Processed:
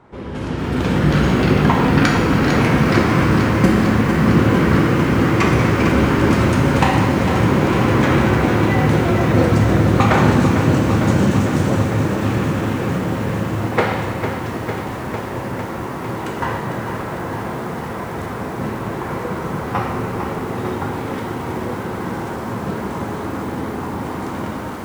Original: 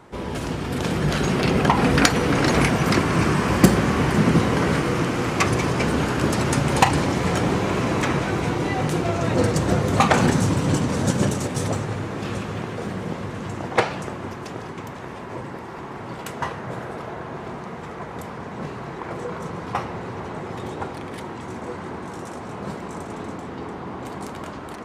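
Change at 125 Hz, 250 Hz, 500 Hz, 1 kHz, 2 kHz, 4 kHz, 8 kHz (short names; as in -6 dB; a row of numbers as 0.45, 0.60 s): +6.5, +6.5, +5.0, +4.0, +4.5, +1.0, -3.0 dB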